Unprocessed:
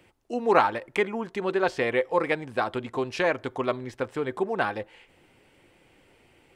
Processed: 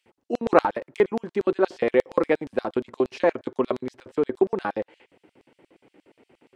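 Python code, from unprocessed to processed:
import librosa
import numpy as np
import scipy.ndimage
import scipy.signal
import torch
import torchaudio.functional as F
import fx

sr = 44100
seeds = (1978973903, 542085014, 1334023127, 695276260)

y = fx.tilt_eq(x, sr, slope=-3.5)
y = fx.filter_lfo_highpass(y, sr, shape='square', hz=8.5, low_hz=290.0, high_hz=4400.0, q=1.0)
y = y * 10.0 ** (1.5 / 20.0)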